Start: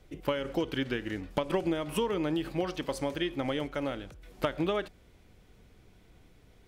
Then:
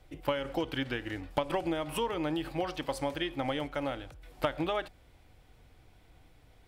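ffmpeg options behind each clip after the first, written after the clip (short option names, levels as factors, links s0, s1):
-af "equalizer=f=200:t=o:w=0.33:g=-12,equalizer=f=400:t=o:w=0.33:g=-7,equalizer=f=800:t=o:w=0.33:g=5,equalizer=f=6300:t=o:w=0.33:g=-4"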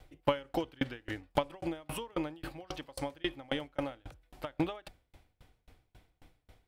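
-af "aeval=exprs='val(0)*pow(10,-33*if(lt(mod(3.7*n/s,1),2*abs(3.7)/1000),1-mod(3.7*n/s,1)/(2*abs(3.7)/1000),(mod(3.7*n/s,1)-2*abs(3.7)/1000)/(1-2*abs(3.7)/1000))/20)':c=same,volume=1.78"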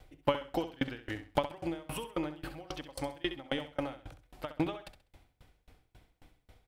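-af "aecho=1:1:66|132|198:0.282|0.0761|0.0205"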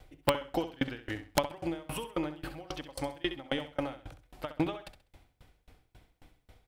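-af "aeval=exprs='(mod(5.31*val(0)+1,2)-1)/5.31':c=same,volume=1.19"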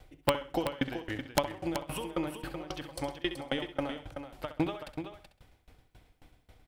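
-af "aecho=1:1:378:0.376"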